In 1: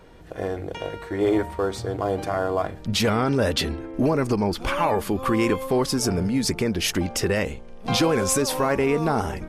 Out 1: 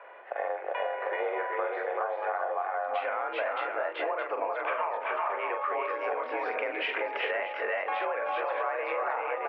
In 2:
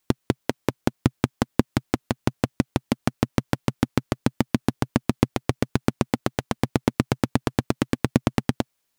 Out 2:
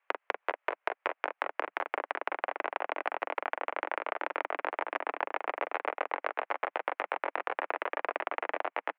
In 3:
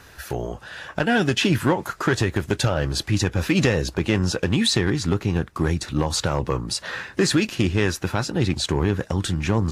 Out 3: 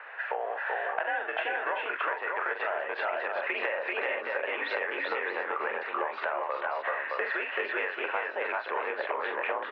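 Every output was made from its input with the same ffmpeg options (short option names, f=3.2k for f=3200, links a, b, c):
-af "aecho=1:1:43|382|405|619:0.501|0.668|0.631|0.398,highpass=f=530:t=q:w=0.5412,highpass=f=530:t=q:w=1.307,lowpass=f=2.4k:t=q:w=0.5176,lowpass=f=2.4k:t=q:w=0.7071,lowpass=f=2.4k:t=q:w=1.932,afreqshift=55,acompressor=threshold=-33dB:ratio=12,volume=5.5dB"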